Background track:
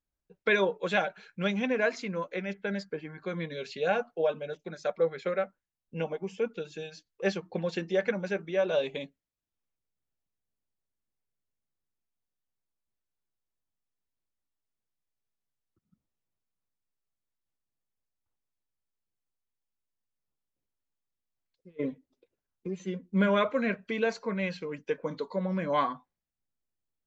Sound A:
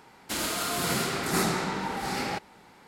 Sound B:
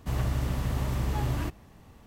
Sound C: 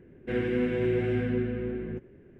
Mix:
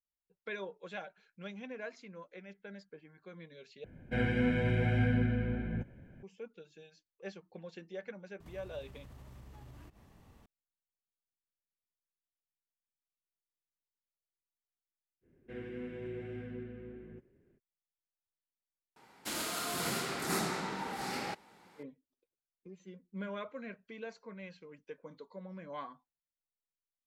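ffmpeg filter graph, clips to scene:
-filter_complex "[3:a]asplit=2[s0][s1];[0:a]volume=0.158[s2];[s0]aecho=1:1:1.3:0.82[s3];[2:a]acompressor=threshold=0.00708:ratio=6:attack=3.2:release=140:knee=1:detection=peak[s4];[1:a]highpass=f=120:p=1[s5];[s2]asplit=2[s6][s7];[s6]atrim=end=3.844[s8];[s3]atrim=end=2.39,asetpts=PTS-STARTPTS,volume=0.841[s9];[s7]atrim=start=6.226[s10];[s4]atrim=end=2.06,asetpts=PTS-STARTPTS,volume=0.422,afade=t=in:d=0.004:c=hsin,afade=t=out:st=2.056:d=0.004:c=hsin,adelay=8400[s11];[s1]atrim=end=2.39,asetpts=PTS-STARTPTS,volume=0.168,afade=t=in:d=0.05,afade=t=out:st=2.34:d=0.05,adelay=15210[s12];[s5]atrim=end=2.87,asetpts=PTS-STARTPTS,volume=0.447,afade=t=in:d=0.004:c=hsin,afade=t=out:st=2.866:d=0.004:c=hsin,adelay=18960[s13];[s8][s9]acrossfade=d=0.004:c1=hsin:c2=hsin[s14];[s14][s10]acrossfade=d=0.004:c1=hsin:c2=hsin[s15];[s15][s11][s12][s13]amix=inputs=4:normalize=0"

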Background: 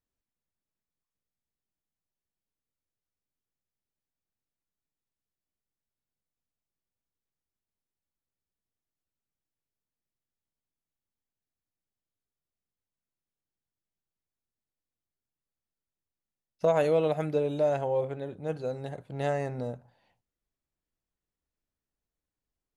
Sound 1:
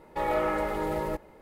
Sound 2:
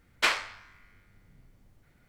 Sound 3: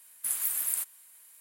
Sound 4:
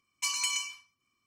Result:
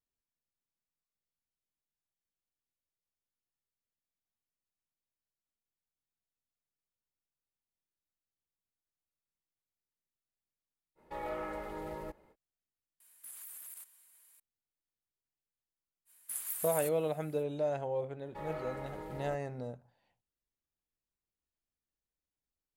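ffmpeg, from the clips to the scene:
-filter_complex "[1:a]asplit=2[s0][s1];[3:a]asplit=2[s2][s3];[0:a]volume=0.447[s4];[s2]acompressor=threshold=0.0178:ratio=5:attack=0.32:release=40:knee=1:detection=rms[s5];[s0]atrim=end=1.41,asetpts=PTS-STARTPTS,volume=0.251,afade=t=in:d=0.05,afade=t=out:st=1.36:d=0.05,adelay=10950[s6];[s5]atrim=end=1.4,asetpts=PTS-STARTPTS,volume=0.376,afade=t=in:d=0.004:c=hsin,afade=t=out:st=1.396:d=0.004:c=hsin,adelay=573300S[s7];[s3]atrim=end=1.4,asetpts=PTS-STARTPTS,volume=0.355,afade=t=in:d=0.05,afade=t=out:st=1.35:d=0.05,adelay=16050[s8];[s1]atrim=end=1.41,asetpts=PTS-STARTPTS,volume=0.178,afade=t=in:d=0.004:c=hsin,afade=t=out:st=1.406:d=0.004:c=hsin,adelay=18190[s9];[s4][s6][s7][s8][s9]amix=inputs=5:normalize=0"

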